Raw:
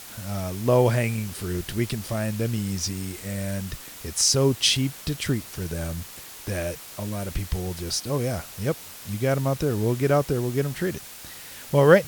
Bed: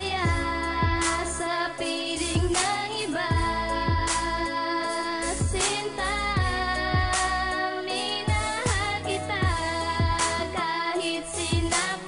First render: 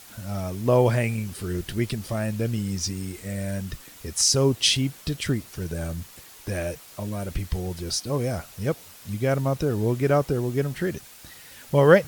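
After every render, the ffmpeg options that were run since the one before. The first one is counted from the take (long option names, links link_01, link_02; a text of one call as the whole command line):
ffmpeg -i in.wav -af "afftdn=noise_reduction=6:noise_floor=-42" out.wav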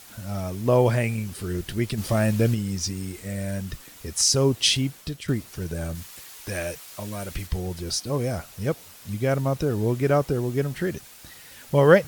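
ffmpeg -i in.wav -filter_complex "[0:a]asplit=3[link_01][link_02][link_03];[link_01]afade=type=out:start_time=1.97:duration=0.02[link_04];[link_02]acontrast=42,afade=type=in:start_time=1.97:duration=0.02,afade=type=out:start_time=2.53:duration=0.02[link_05];[link_03]afade=type=in:start_time=2.53:duration=0.02[link_06];[link_04][link_05][link_06]amix=inputs=3:normalize=0,asettb=1/sr,asplit=3[link_07][link_08][link_09];[link_07]atrim=end=5.954[link_10];[link_08]atrim=start=5.95:end=7.47,asetpts=PTS-STARTPTS,afade=type=in:duration=0.004:curve=qsin,afade=type=out:start_time=1.516:duration=0.004:curve=qsin,tiltshelf=frequency=760:gain=-4[link_11];[link_09]atrim=start=7.466[link_12];[link_10][link_11]acrossfade=duration=0.004:curve1=hsin:curve2=qsin[link_13];[link_13][link_12]acrossfade=duration=0.004:curve1=qsin:curve2=hsin,asplit=2[link_14][link_15];[link_14]atrim=end=5.28,asetpts=PTS-STARTPTS,afade=type=out:start_time=4.72:duration=0.56:curve=qsin:silence=0.298538[link_16];[link_15]atrim=start=5.28,asetpts=PTS-STARTPTS,afade=type=in:duration=0.004:curve=hsin:silence=0.298538[link_17];[link_16][link_17]concat=n=2:v=0:a=1" out.wav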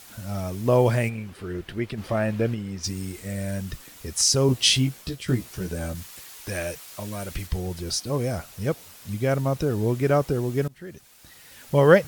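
ffmpeg -i in.wav -filter_complex "[0:a]asplit=3[link_01][link_02][link_03];[link_01]afade=type=out:start_time=1.08:duration=0.02[link_04];[link_02]bass=frequency=250:gain=-6,treble=frequency=4000:gain=-15,afade=type=in:start_time=1.08:duration=0.02,afade=type=out:start_time=2.83:duration=0.02[link_05];[link_03]afade=type=in:start_time=2.83:duration=0.02[link_06];[link_04][link_05][link_06]amix=inputs=3:normalize=0,asettb=1/sr,asplit=3[link_07][link_08][link_09];[link_07]atrim=end=4.474[link_10];[link_08]atrim=start=4.47:end=5.94,asetpts=PTS-STARTPTS,afade=type=in:duration=0.004:curve=qsin,afade=type=out:start_time=1.466:duration=0.004:curve=qsin,asplit=2[link_11][link_12];[link_12]adelay=16,volume=-4dB[link_13];[link_11][link_13]amix=inputs=2:normalize=0,atrim=end_sample=64827[link_14];[link_09]atrim=start=5.936[link_15];[link_10][link_14]acrossfade=duration=0.004:curve1=hsin:curve2=qsin[link_16];[link_16][link_15]acrossfade=duration=0.004:curve1=qsin:curve2=hsin,asplit=2[link_17][link_18];[link_17]atrim=end=10.68,asetpts=PTS-STARTPTS,afade=type=out:start_time=10.676:duration=0.004:curve=hsin:silence=0.0794328[link_19];[link_18]atrim=start=10.68,asetpts=PTS-STARTPTS,afade=type=in:duration=1.09:silence=0.0794328[link_20];[link_19][link_20]concat=n=2:v=0:a=1" out.wav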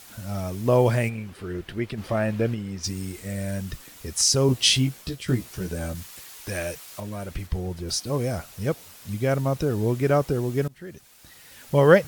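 ffmpeg -i in.wav -filter_complex "[0:a]asettb=1/sr,asplit=3[link_01][link_02][link_03];[link_01]atrim=end=7.004[link_04];[link_02]atrim=start=7:end=7.89,asetpts=PTS-STARTPTS,afade=type=in:duration=0.004:curve=qsin,afade=type=out:start_time=0.886:duration=0.004:curve=qsin,highshelf=frequency=2400:gain=-8[link_05];[link_03]atrim=start=7.886[link_06];[link_04][link_05]acrossfade=duration=0.004:curve1=hsin:curve2=qsin[link_07];[link_07][link_06]acrossfade=duration=0.004:curve1=qsin:curve2=hsin" out.wav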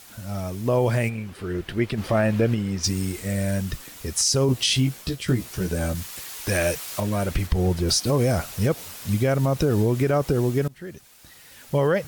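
ffmpeg -i in.wav -af "dynaudnorm=framelen=250:gausssize=13:maxgain=11.5dB,alimiter=limit=-11.5dB:level=0:latency=1:release=83" out.wav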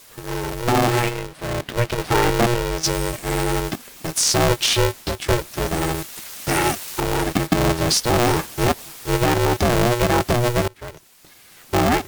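ffmpeg -i in.wav -filter_complex "[0:a]asplit=2[link_01][link_02];[link_02]acrusher=bits=4:mix=0:aa=0.000001,volume=-8dB[link_03];[link_01][link_03]amix=inputs=2:normalize=0,aeval=exprs='val(0)*sgn(sin(2*PI*240*n/s))':channel_layout=same" out.wav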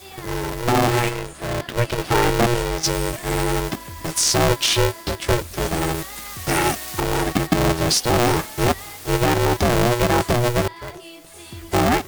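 ffmpeg -i in.wav -i bed.wav -filter_complex "[1:a]volume=-12.5dB[link_01];[0:a][link_01]amix=inputs=2:normalize=0" out.wav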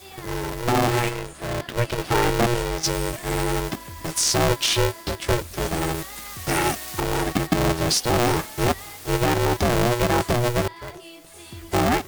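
ffmpeg -i in.wav -af "volume=-2.5dB" out.wav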